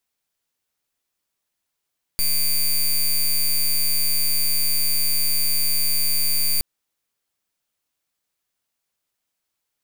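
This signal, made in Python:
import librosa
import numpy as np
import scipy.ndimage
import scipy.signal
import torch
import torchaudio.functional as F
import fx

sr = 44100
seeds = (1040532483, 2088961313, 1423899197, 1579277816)

y = fx.pulse(sr, length_s=4.42, hz=4650.0, level_db=-19.0, duty_pct=12)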